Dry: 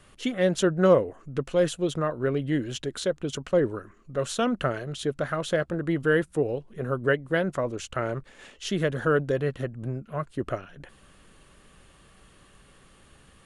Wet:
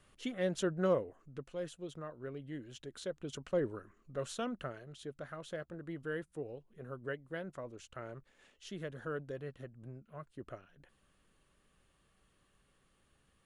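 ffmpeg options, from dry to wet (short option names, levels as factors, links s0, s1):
-af "volume=0.668,afade=t=out:st=0.76:d=0.77:silence=0.446684,afade=t=in:st=2.69:d=0.83:silence=0.421697,afade=t=out:st=4.16:d=0.6:silence=0.473151"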